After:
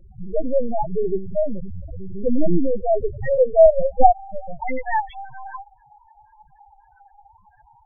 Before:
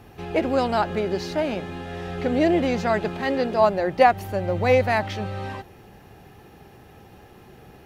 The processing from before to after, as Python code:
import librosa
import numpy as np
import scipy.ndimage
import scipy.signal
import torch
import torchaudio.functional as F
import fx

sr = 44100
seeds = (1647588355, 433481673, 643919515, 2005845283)

y = fx.filter_sweep_highpass(x, sr, from_hz=140.0, to_hz=950.0, start_s=1.74, end_s=4.42, q=1.7)
y = fx.lpc_vocoder(y, sr, seeds[0], excitation='pitch_kept', order=8)
y = fx.dynamic_eq(y, sr, hz=760.0, q=6.9, threshold_db=-38.0, ratio=4.0, max_db=-6)
y = fx.spec_topn(y, sr, count=4)
y = fx.low_shelf(y, sr, hz=270.0, db=4.5, at=(3.66, 4.58))
y = y * librosa.db_to_amplitude(5.0)